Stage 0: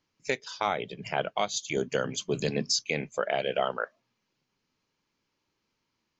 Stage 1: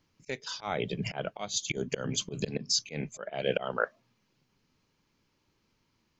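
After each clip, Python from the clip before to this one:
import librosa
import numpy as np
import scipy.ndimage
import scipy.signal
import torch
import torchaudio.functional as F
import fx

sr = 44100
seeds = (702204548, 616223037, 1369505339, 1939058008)

y = fx.low_shelf(x, sr, hz=210.0, db=9.0)
y = fx.auto_swell(y, sr, attack_ms=264.0)
y = y * librosa.db_to_amplitude(3.5)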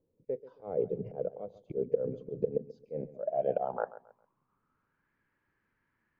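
y = fx.filter_sweep_lowpass(x, sr, from_hz=490.0, to_hz=1700.0, start_s=2.85, end_s=5.14, q=6.5)
y = fx.echo_feedback(y, sr, ms=135, feedback_pct=29, wet_db=-16.5)
y = y * librosa.db_to_amplitude(-7.5)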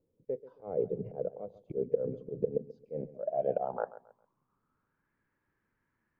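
y = fx.high_shelf(x, sr, hz=2100.0, db=-8.5)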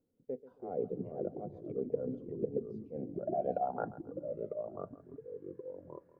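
y = fx.small_body(x, sr, hz=(250.0, 730.0, 1400.0), ring_ms=45, db=10)
y = fx.echo_pitch(y, sr, ms=275, semitones=-3, count=3, db_per_echo=-6.0)
y = y * librosa.db_to_amplitude(-5.5)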